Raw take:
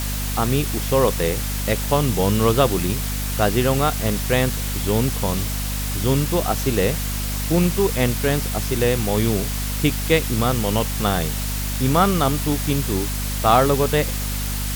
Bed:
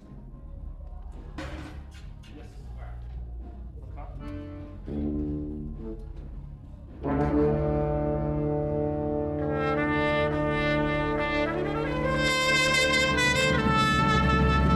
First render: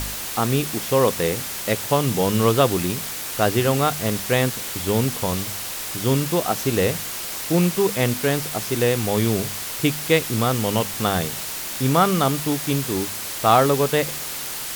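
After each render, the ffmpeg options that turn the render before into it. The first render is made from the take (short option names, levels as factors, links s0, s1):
-af "bandreject=f=50:t=h:w=4,bandreject=f=100:t=h:w=4,bandreject=f=150:t=h:w=4,bandreject=f=200:t=h:w=4,bandreject=f=250:t=h:w=4"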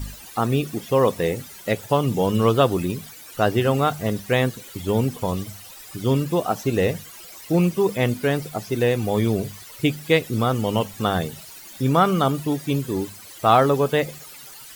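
-af "afftdn=nr=16:nf=-30"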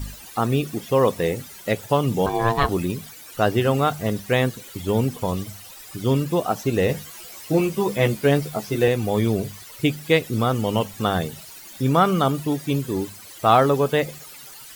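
-filter_complex "[0:a]asettb=1/sr,asplit=3[s0][s1][s2];[s0]atrim=end=2.264[s3];[s1]atrim=start=2.26:end=2.69,asetpts=PTS-STARTPTS,afade=t=in:d=0.004:c=qsin,afade=t=out:st=0.426:d=0.004:c=qsin,aeval=exprs='val(0)*sin(2*PI*570*n/s)':c=same[s4];[s2]atrim=start=2.686[s5];[s3][s4]acrossfade=d=0.004:c1=hsin:c2=qsin[s6];[s6][s5]acrossfade=d=0.004:c1=qsin:c2=hsin,asettb=1/sr,asplit=3[s7][s8][s9];[s7]atrim=end=6.884[s10];[s8]atrim=start=6.88:end=8.88,asetpts=PTS-STARTPTS,afade=t=in:d=0.004:c=qsin,afade=t=out:st=1.996:d=0.004:c=qsin,asplit=2[s11][s12];[s12]adelay=14,volume=0.668[s13];[s11][s13]amix=inputs=2:normalize=0,atrim=end_sample=88200[s14];[s9]atrim=start=8.876[s15];[s10][s14]acrossfade=d=0.004:c1=hsin:c2=qsin[s16];[s16][s15]acrossfade=d=0.004:c1=qsin:c2=hsin"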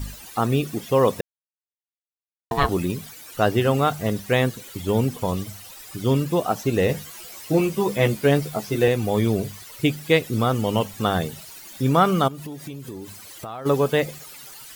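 -filter_complex "[0:a]asplit=3[s0][s1][s2];[s0]afade=t=out:st=12.27:d=0.02[s3];[s1]acompressor=threshold=0.0282:ratio=8:attack=3.2:release=140:knee=1:detection=peak,afade=t=in:st=12.27:d=0.02,afade=t=out:st=13.65:d=0.02[s4];[s2]afade=t=in:st=13.65:d=0.02[s5];[s3][s4][s5]amix=inputs=3:normalize=0,asplit=3[s6][s7][s8];[s6]atrim=end=1.21,asetpts=PTS-STARTPTS,afade=t=out:st=1.206:d=0.004:c=hsin[s9];[s7]atrim=start=1.21:end=2.51,asetpts=PTS-STARTPTS,volume=0[s10];[s8]atrim=start=2.51,asetpts=PTS-STARTPTS,afade=t=in:d=0.004:c=hsin[s11];[s9][s10][s11]concat=n=3:v=0:a=1"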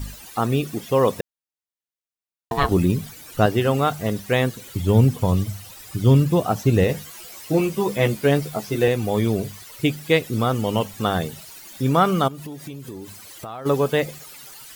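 -filter_complex "[0:a]asettb=1/sr,asplit=3[s0][s1][s2];[s0]atrim=end=2.714[s3];[s1]atrim=start=2.71:end=3.46,asetpts=PTS-STARTPTS,afade=t=in:d=0.004:c=qsin,afade=t=out:st=0.746:d=0.004:c=qsin,lowshelf=f=280:g=10[s4];[s2]atrim=start=3.456[s5];[s3][s4]acrossfade=d=0.004:c1=hsin:c2=qsin[s6];[s6][s5]acrossfade=d=0.004:c1=qsin:c2=hsin,asettb=1/sr,asplit=3[s7][s8][s9];[s7]atrim=end=4.624[s10];[s8]atrim=start=4.62:end=6.84,asetpts=PTS-STARTPTS,afade=t=in:d=0.004:c=qsin,afade=t=out:st=2.216:d=0.004:c=qsin,equalizer=f=97:w=0.67:g=10[s11];[s9]atrim=start=6.836[s12];[s10][s11]acrossfade=d=0.004:c1=hsin:c2=qsin[s13];[s13][s12]acrossfade=d=0.004:c1=qsin:c2=hsin"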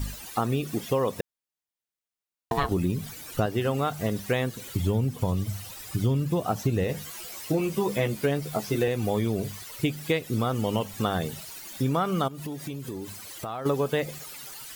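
-af "acompressor=threshold=0.0794:ratio=5"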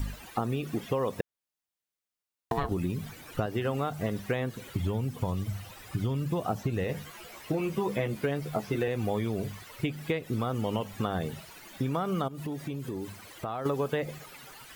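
-filter_complex "[0:a]acrossover=split=790|3000[s0][s1][s2];[s0]acompressor=threshold=0.0447:ratio=4[s3];[s1]acompressor=threshold=0.0178:ratio=4[s4];[s2]acompressor=threshold=0.00224:ratio=4[s5];[s3][s4][s5]amix=inputs=3:normalize=0"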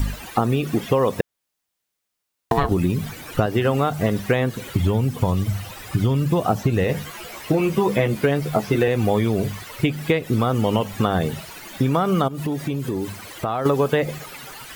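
-af "volume=3.35"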